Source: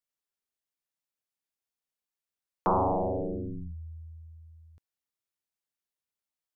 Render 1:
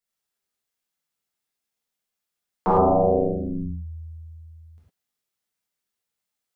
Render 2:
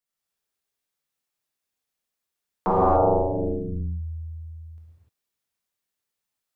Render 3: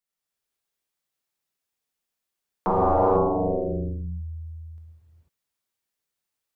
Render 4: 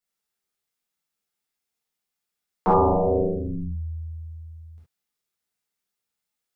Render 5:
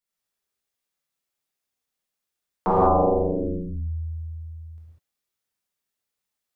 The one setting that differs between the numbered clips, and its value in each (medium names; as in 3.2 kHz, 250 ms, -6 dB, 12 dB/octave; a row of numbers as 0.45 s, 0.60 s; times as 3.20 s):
gated-style reverb, gate: 130 ms, 320 ms, 520 ms, 90 ms, 220 ms